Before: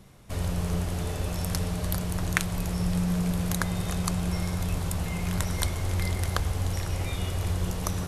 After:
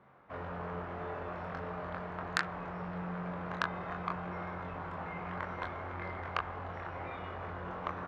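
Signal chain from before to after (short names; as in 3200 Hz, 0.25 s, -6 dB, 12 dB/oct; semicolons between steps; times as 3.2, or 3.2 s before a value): LPF 1400 Hz 24 dB/oct; differentiator; early reflections 23 ms -3 dB, 37 ms -9 dB; core saturation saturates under 3200 Hz; gain +17 dB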